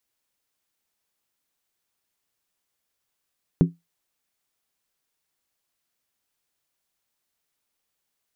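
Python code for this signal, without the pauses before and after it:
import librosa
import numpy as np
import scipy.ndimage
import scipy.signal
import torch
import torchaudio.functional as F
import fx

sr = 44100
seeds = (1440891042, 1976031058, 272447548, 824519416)

y = fx.strike_skin(sr, length_s=0.63, level_db=-9.5, hz=169.0, decay_s=0.19, tilt_db=6, modes=5)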